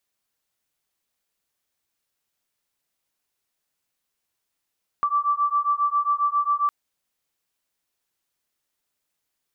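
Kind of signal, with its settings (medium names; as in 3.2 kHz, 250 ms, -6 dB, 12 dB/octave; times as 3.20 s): beating tones 1.16 kHz, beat 7.4 Hz, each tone -22.5 dBFS 1.66 s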